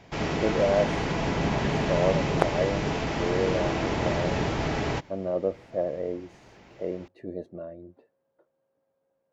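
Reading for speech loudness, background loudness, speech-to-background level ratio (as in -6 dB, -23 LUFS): -30.5 LUFS, -28.0 LUFS, -2.5 dB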